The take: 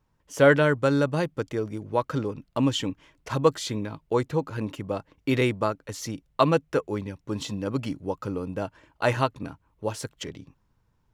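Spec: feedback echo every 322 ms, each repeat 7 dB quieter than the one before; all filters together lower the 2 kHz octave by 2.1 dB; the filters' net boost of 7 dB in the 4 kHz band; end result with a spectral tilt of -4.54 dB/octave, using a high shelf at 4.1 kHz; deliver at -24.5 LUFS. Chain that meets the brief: peaking EQ 2 kHz -6.5 dB; peaking EQ 4 kHz +6.5 dB; treble shelf 4.1 kHz +8.5 dB; feedback delay 322 ms, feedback 45%, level -7 dB; trim +1 dB

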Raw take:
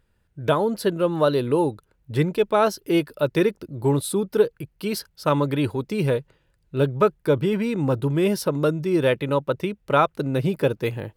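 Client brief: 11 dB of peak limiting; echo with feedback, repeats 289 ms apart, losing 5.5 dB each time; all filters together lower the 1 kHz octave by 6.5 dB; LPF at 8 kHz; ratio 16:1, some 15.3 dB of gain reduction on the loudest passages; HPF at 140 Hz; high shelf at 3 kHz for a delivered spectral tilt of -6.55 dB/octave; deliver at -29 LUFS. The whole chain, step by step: high-pass 140 Hz; low-pass 8 kHz; peaking EQ 1 kHz -8 dB; treble shelf 3 kHz -5.5 dB; compression 16:1, threshold -28 dBFS; peak limiter -28.5 dBFS; feedback delay 289 ms, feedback 53%, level -5.5 dB; trim +8 dB

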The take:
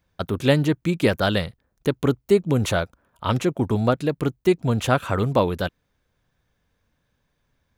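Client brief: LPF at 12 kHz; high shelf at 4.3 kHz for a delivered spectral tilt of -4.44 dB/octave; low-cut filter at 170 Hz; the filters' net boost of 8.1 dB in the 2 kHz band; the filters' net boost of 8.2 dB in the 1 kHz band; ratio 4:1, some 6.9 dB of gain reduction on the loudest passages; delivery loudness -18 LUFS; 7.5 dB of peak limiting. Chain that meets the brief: high-pass 170 Hz; low-pass 12 kHz; peaking EQ 1 kHz +8.5 dB; peaking EQ 2 kHz +6 dB; treble shelf 4.3 kHz +7.5 dB; compression 4:1, threshold -17 dBFS; trim +8 dB; peak limiter -2.5 dBFS

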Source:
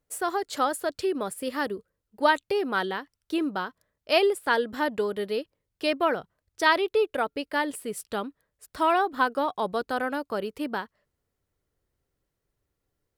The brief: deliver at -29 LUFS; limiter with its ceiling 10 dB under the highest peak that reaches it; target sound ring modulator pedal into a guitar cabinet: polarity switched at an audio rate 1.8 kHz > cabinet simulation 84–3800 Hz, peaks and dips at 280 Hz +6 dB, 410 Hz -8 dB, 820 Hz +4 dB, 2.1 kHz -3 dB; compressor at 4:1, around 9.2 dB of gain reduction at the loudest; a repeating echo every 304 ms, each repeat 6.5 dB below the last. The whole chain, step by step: compression 4:1, threshold -27 dBFS; peak limiter -26.5 dBFS; feedback delay 304 ms, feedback 47%, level -6.5 dB; polarity switched at an audio rate 1.8 kHz; cabinet simulation 84–3800 Hz, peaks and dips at 280 Hz +6 dB, 410 Hz -8 dB, 820 Hz +4 dB, 2.1 kHz -3 dB; trim +7 dB

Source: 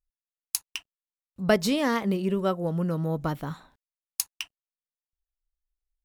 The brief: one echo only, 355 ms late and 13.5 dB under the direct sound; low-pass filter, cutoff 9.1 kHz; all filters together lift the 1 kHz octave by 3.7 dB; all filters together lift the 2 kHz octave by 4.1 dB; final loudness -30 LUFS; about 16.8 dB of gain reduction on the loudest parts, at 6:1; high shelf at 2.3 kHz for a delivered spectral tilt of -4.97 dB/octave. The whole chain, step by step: low-pass 9.1 kHz; peaking EQ 1 kHz +4 dB; peaking EQ 2 kHz +5.5 dB; treble shelf 2.3 kHz -3.5 dB; compression 6:1, threshold -33 dBFS; delay 355 ms -13.5 dB; trim +8 dB

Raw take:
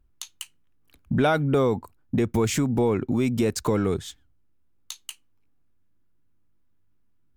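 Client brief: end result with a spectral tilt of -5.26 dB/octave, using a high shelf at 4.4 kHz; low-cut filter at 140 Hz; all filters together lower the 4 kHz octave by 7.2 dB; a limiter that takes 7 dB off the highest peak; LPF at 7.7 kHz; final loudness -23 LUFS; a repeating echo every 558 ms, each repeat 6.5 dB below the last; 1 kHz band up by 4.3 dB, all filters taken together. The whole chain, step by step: high-pass 140 Hz; low-pass 7.7 kHz; peaking EQ 1 kHz +6.5 dB; peaking EQ 4 kHz -6 dB; treble shelf 4.4 kHz -7 dB; peak limiter -14.5 dBFS; feedback delay 558 ms, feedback 47%, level -6.5 dB; trim +3 dB

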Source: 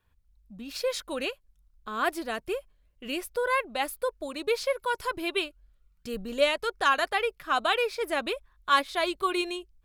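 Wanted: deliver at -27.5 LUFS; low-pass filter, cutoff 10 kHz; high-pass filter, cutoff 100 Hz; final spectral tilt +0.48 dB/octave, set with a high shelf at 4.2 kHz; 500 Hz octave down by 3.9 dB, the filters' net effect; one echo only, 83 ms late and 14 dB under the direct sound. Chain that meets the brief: high-pass 100 Hz; low-pass 10 kHz; peaking EQ 500 Hz -4.5 dB; treble shelf 4.2 kHz -6.5 dB; delay 83 ms -14 dB; trim +3.5 dB

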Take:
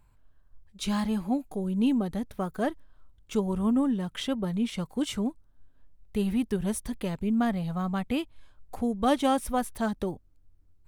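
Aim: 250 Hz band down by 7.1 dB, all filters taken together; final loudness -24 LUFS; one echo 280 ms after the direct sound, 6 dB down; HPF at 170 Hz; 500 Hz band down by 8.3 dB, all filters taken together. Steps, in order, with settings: high-pass 170 Hz; peaking EQ 250 Hz -5 dB; peaking EQ 500 Hz -9 dB; delay 280 ms -6 dB; trim +10.5 dB

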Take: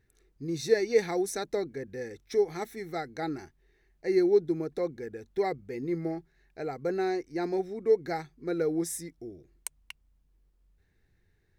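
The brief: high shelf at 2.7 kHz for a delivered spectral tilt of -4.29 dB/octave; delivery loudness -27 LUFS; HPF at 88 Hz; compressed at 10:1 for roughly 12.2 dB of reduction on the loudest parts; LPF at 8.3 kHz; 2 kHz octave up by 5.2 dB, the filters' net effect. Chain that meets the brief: high-pass 88 Hz; low-pass 8.3 kHz; peaking EQ 2 kHz +4.5 dB; treble shelf 2.7 kHz +4 dB; compression 10:1, threshold -29 dBFS; trim +9 dB

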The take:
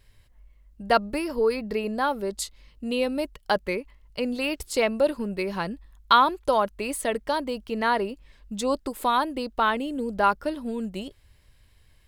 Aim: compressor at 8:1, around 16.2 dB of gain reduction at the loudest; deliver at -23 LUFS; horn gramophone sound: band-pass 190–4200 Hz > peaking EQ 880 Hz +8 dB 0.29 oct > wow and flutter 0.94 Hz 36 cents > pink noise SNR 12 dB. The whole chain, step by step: compression 8:1, threshold -30 dBFS; band-pass 190–4200 Hz; peaking EQ 880 Hz +8 dB 0.29 oct; wow and flutter 0.94 Hz 36 cents; pink noise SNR 12 dB; trim +11.5 dB

